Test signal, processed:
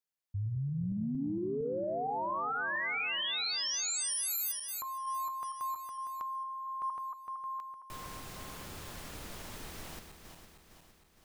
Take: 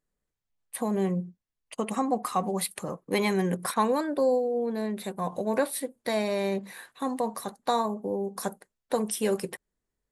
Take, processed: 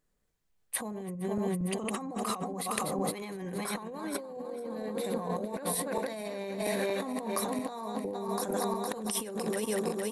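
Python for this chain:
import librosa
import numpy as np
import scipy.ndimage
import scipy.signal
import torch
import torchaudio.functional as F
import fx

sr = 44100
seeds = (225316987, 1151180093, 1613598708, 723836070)

y = fx.reverse_delay_fb(x, sr, ms=230, feedback_pct=70, wet_db=-8)
y = fx.over_compress(y, sr, threshold_db=-35.0, ratio=-1.0)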